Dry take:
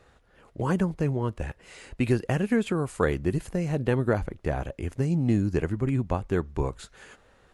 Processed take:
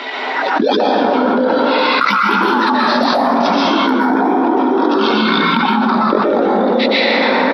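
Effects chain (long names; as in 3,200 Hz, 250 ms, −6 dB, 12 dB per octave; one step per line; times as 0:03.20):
spectral dynamics exaggerated over time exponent 1.5
low-pass filter 7,800 Hz 24 dB per octave
de-essing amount 95%
Butterworth high-pass 450 Hz 48 dB per octave
spectral tilt +4 dB per octave
pitch shifter −11 semitones
in parallel at −10.5 dB: hard clipping −24.5 dBFS, distortion −16 dB
on the sum: echo with shifted repeats 134 ms, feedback 35%, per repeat +150 Hz, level −14.5 dB
dense smooth reverb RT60 2 s, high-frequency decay 0.35×, pre-delay 110 ms, DRR −6.5 dB
boost into a limiter +17.5 dB
envelope flattener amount 100%
level −6.5 dB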